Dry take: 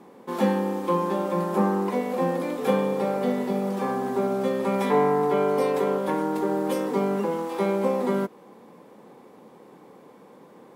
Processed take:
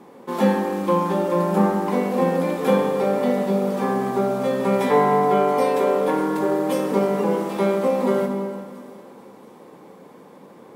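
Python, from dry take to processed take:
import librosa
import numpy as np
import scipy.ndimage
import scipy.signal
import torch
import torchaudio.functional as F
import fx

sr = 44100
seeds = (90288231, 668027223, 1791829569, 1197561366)

p1 = x + fx.echo_wet_highpass(x, sr, ms=678, feedback_pct=53, hz=4400.0, wet_db=-16, dry=0)
p2 = fx.rev_plate(p1, sr, seeds[0], rt60_s=2.3, hf_ratio=0.8, predelay_ms=0, drr_db=4.0)
y = p2 * librosa.db_to_amplitude(3.0)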